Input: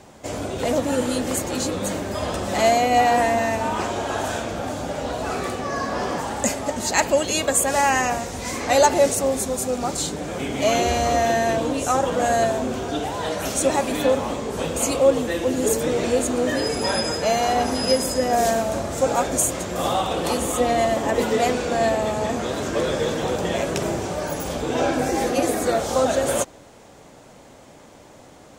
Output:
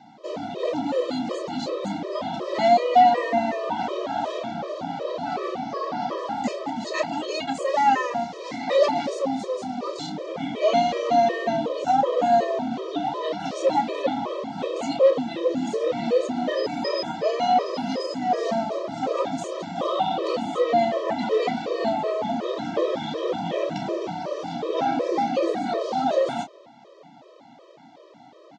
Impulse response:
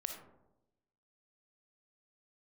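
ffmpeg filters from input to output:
-filter_complex "[0:a]aeval=exprs='0.299*(abs(mod(val(0)/0.299+3,4)-2)-1)':c=same,highpass=f=160:w=0.5412,highpass=f=160:w=1.3066,equalizer=f=770:t=q:w=4:g=4,equalizer=f=1600:t=q:w=4:g=-6,equalizer=f=2500:t=q:w=4:g=-5,lowpass=f=4500:w=0.5412,lowpass=f=4500:w=1.3066,bandreject=f=1700:w=17,asplit=2[s0][s1];[s1]adelay=30,volume=0.355[s2];[s0][s2]amix=inputs=2:normalize=0,afftfilt=real='re*gt(sin(2*PI*2.7*pts/sr)*(1-2*mod(floor(b*sr/1024/330),2)),0)':imag='im*gt(sin(2*PI*2.7*pts/sr)*(1-2*mod(floor(b*sr/1024/330),2)),0)':win_size=1024:overlap=0.75"

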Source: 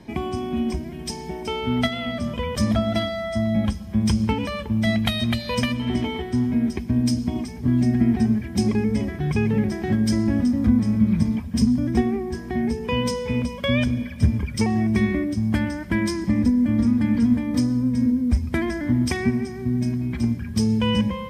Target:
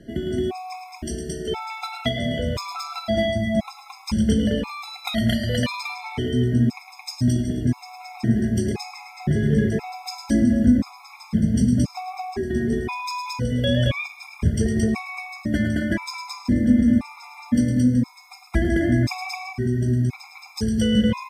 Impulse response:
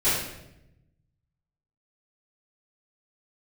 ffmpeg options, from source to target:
-filter_complex "[0:a]aecho=1:1:107.9|221.6:0.398|0.794,asplit=2[s0][s1];[1:a]atrim=start_sample=2205[s2];[s1][s2]afir=irnorm=-1:irlink=0,volume=0.075[s3];[s0][s3]amix=inputs=2:normalize=0,afftfilt=real='re*gt(sin(2*PI*0.97*pts/sr)*(1-2*mod(floor(b*sr/1024/690),2)),0)':imag='im*gt(sin(2*PI*0.97*pts/sr)*(1-2*mod(floor(b*sr/1024/690),2)),0)':win_size=1024:overlap=0.75"

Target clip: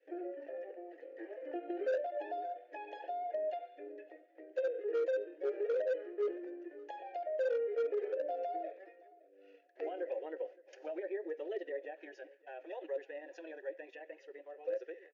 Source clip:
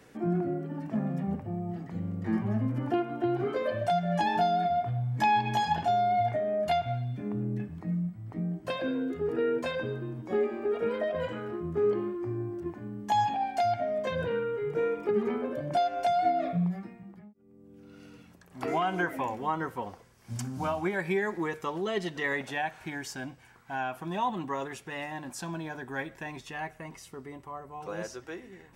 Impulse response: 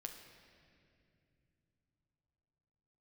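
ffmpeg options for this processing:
-filter_complex "[0:a]agate=range=0.0224:threshold=0.00398:ratio=3:detection=peak,asplit=3[s0][s1][s2];[s0]bandpass=f=530:t=q:w=8,volume=1[s3];[s1]bandpass=f=1840:t=q:w=8,volume=0.501[s4];[s2]bandpass=f=2480:t=q:w=8,volume=0.355[s5];[s3][s4][s5]amix=inputs=3:normalize=0,acrossover=split=770[s6][s7];[s7]acompressor=threshold=0.00126:ratio=8[s8];[s6][s8]amix=inputs=2:normalize=0,volume=53.1,asoftclip=hard,volume=0.0188,afftfilt=real='re*between(b*sr/4096,290,7000)':imag='im*between(b*sr/4096,290,7000)':win_size=4096:overlap=0.75,atempo=1.9,aecho=1:1:567|1134:0.075|0.0172,volume=1.88"

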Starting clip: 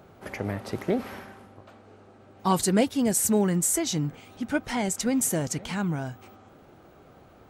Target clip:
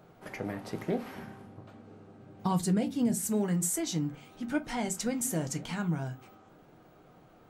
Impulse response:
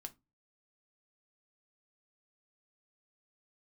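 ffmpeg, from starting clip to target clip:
-filter_complex "[0:a]asettb=1/sr,asplit=3[s0][s1][s2];[s0]atrim=end=1.164[s3];[s1]atrim=start=1.16:end=3.19,asetpts=PTS-STARTPTS,afade=t=in:d=0.004:c=qsin,afade=t=out:st=2.026:d=0.004:c=qsin,equalizer=f=120:w=0.55:g=11[s4];[s2]atrim=start=3.186[s5];[s3][s4]acrossfade=d=0.004:c1=hsin:c2=qsin[s6];[s6][s5]acrossfade=d=0.004:c1=qsin:c2=hsin[s7];[1:a]atrim=start_sample=2205[s8];[s7][s8]afir=irnorm=-1:irlink=0,alimiter=limit=0.106:level=0:latency=1:release=386"

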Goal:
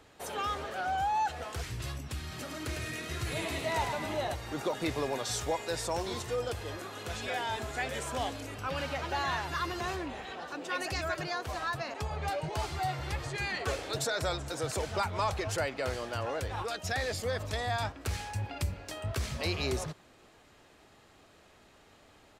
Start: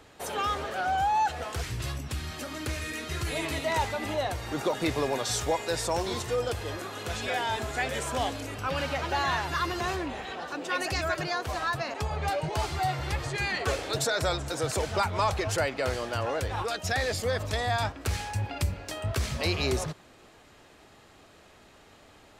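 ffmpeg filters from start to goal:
-filter_complex "[0:a]asplit=3[s0][s1][s2];[s0]afade=t=out:st=2.31:d=0.02[s3];[s1]asplit=6[s4][s5][s6][s7][s8][s9];[s5]adelay=104,afreqshift=42,volume=0.501[s10];[s6]adelay=208,afreqshift=84,volume=0.195[s11];[s7]adelay=312,afreqshift=126,volume=0.0759[s12];[s8]adelay=416,afreqshift=168,volume=0.0299[s13];[s9]adelay=520,afreqshift=210,volume=0.0116[s14];[s4][s10][s11][s12][s13][s14]amix=inputs=6:normalize=0,afade=t=in:st=2.31:d=0.02,afade=t=out:st=4.34:d=0.02[s15];[s2]afade=t=in:st=4.34:d=0.02[s16];[s3][s15][s16]amix=inputs=3:normalize=0,volume=0.596"

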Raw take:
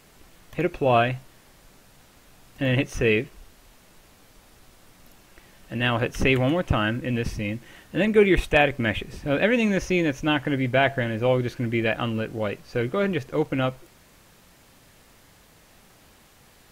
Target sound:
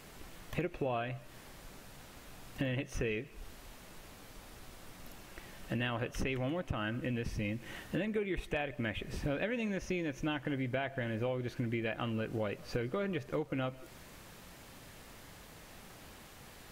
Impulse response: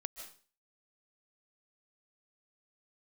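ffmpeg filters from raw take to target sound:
-filter_complex "[0:a]acompressor=threshold=0.02:ratio=10,asplit=2[s0][s1];[1:a]atrim=start_sample=2205,asetrate=41895,aresample=44100,lowpass=4700[s2];[s1][s2]afir=irnorm=-1:irlink=0,volume=0.282[s3];[s0][s3]amix=inputs=2:normalize=0"

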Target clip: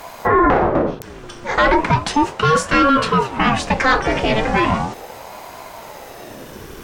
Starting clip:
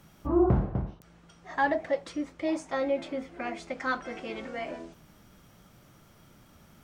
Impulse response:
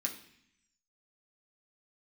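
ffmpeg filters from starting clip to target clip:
-filter_complex "[0:a]apsyclip=33.5,acrossover=split=150[s0][s1];[s0]acompressor=threshold=0.282:ratio=3[s2];[s2][s1]amix=inputs=2:normalize=0,aeval=exprs='val(0)*sin(2*PI*510*n/s+510*0.65/0.36*sin(2*PI*0.36*n/s))':c=same,volume=0.473"

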